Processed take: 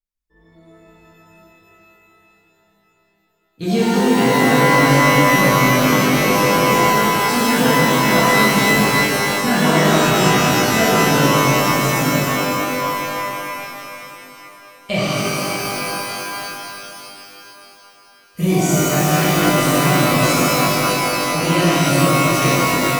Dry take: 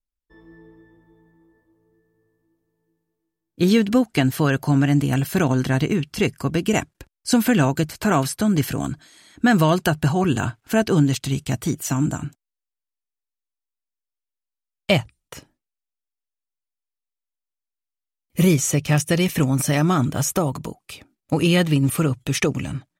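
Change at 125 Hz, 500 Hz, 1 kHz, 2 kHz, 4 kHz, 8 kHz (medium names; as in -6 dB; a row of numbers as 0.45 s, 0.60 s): +1.5 dB, +7.5 dB, +12.5 dB, +11.5 dB, +10.0 dB, +7.5 dB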